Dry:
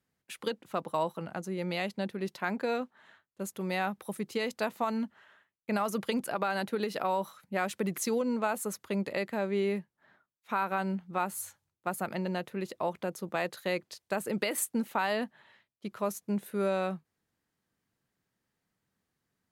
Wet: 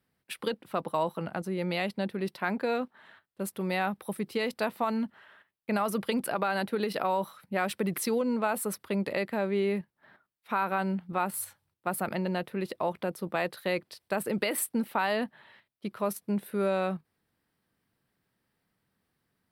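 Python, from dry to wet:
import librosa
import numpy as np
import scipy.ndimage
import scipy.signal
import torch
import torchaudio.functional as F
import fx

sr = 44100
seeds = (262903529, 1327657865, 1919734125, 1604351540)

p1 = fx.peak_eq(x, sr, hz=6700.0, db=-14.0, octaves=0.3)
p2 = fx.level_steps(p1, sr, step_db=22)
y = p1 + (p2 * 10.0 ** (2.0 / 20.0))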